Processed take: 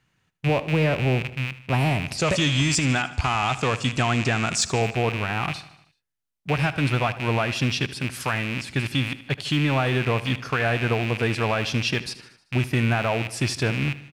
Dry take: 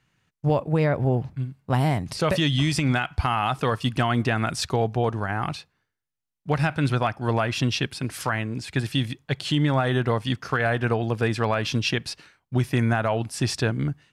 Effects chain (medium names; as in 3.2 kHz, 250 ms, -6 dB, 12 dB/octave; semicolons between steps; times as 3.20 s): rattle on loud lows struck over -33 dBFS, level -18 dBFS; 2.18–4.82 s: resonant low-pass 7.3 kHz, resonance Q 4.7; saturation -8.5 dBFS, distortion -30 dB; feedback delay 77 ms, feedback 56%, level -16 dB